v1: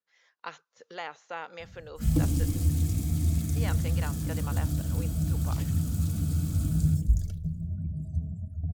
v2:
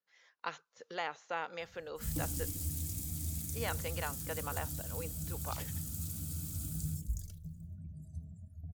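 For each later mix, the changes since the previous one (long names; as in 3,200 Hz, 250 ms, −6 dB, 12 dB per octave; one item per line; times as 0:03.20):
background: add first-order pre-emphasis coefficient 0.8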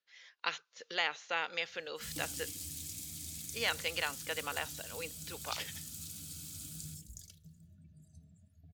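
background −5.5 dB
master: add meter weighting curve D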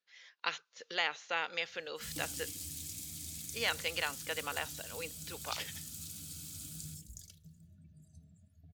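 nothing changed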